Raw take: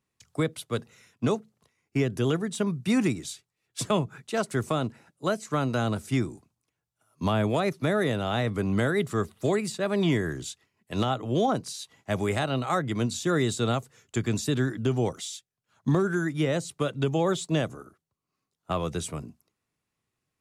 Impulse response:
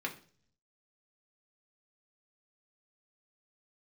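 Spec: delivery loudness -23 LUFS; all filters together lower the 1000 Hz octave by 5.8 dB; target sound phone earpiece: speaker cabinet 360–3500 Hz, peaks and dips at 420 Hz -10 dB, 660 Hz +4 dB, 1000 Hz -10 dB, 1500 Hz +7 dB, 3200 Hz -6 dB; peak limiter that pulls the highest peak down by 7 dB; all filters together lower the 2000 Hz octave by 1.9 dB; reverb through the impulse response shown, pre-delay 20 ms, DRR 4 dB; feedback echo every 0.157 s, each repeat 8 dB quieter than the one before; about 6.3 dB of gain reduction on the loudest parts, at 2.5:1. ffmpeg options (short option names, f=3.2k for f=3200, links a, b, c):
-filter_complex "[0:a]equalizer=f=1k:t=o:g=-7,equalizer=f=2k:t=o:g=-4,acompressor=threshold=-30dB:ratio=2.5,alimiter=level_in=2.5dB:limit=-24dB:level=0:latency=1,volume=-2.5dB,aecho=1:1:157|314|471|628|785:0.398|0.159|0.0637|0.0255|0.0102,asplit=2[a][b];[1:a]atrim=start_sample=2205,adelay=20[c];[b][c]afir=irnorm=-1:irlink=0,volume=-7.5dB[d];[a][d]amix=inputs=2:normalize=0,highpass=360,equalizer=f=420:t=q:w=4:g=-10,equalizer=f=660:t=q:w=4:g=4,equalizer=f=1k:t=q:w=4:g=-10,equalizer=f=1.5k:t=q:w=4:g=7,equalizer=f=3.2k:t=q:w=4:g=-6,lowpass=f=3.5k:w=0.5412,lowpass=f=3.5k:w=1.3066,volume=18dB"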